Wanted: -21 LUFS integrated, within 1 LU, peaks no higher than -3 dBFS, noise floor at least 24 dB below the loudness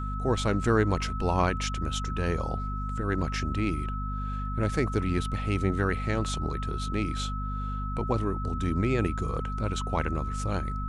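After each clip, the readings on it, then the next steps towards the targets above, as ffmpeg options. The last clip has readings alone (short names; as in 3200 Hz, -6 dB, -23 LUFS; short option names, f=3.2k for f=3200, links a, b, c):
hum 50 Hz; harmonics up to 250 Hz; hum level -30 dBFS; steady tone 1300 Hz; tone level -36 dBFS; loudness -29.5 LUFS; peak -10.5 dBFS; loudness target -21.0 LUFS
-> -af "bandreject=f=50:t=h:w=4,bandreject=f=100:t=h:w=4,bandreject=f=150:t=h:w=4,bandreject=f=200:t=h:w=4,bandreject=f=250:t=h:w=4"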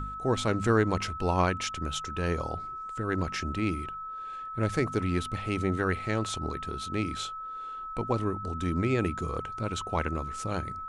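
hum none; steady tone 1300 Hz; tone level -36 dBFS
-> -af "bandreject=f=1.3k:w=30"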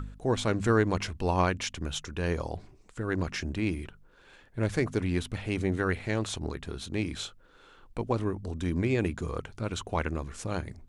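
steady tone none; loudness -31.0 LUFS; peak -12.0 dBFS; loudness target -21.0 LUFS
-> -af "volume=10dB,alimiter=limit=-3dB:level=0:latency=1"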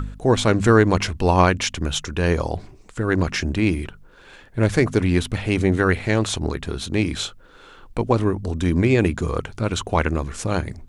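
loudness -21.0 LUFS; peak -3.0 dBFS; noise floor -47 dBFS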